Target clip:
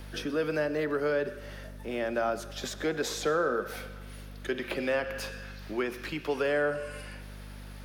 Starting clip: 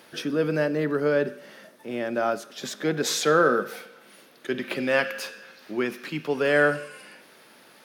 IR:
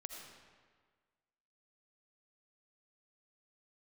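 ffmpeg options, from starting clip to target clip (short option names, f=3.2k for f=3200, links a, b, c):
-filter_complex "[0:a]aeval=exprs='val(0)+0.00794*(sin(2*PI*50*n/s)+sin(2*PI*2*50*n/s)/2+sin(2*PI*3*50*n/s)/3+sin(2*PI*4*50*n/s)/4+sin(2*PI*5*50*n/s)/5)':c=same,acrossover=split=370|1100[a][b][c];[a]acompressor=threshold=-39dB:ratio=4[d];[b]acompressor=threshold=-28dB:ratio=4[e];[c]acompressor=threshold=-36dB:ratio=4[f];[d][e][f]amix=inputs=3:normalize=0,asplit=2[g][h];[1:a]atrim=start_sample=2205,adelay=125[i];[h][i]afir=irnorm=-1:irlink=0,volume=-15.5dB[j];[g][j]amix=inputs=2:normalize=0"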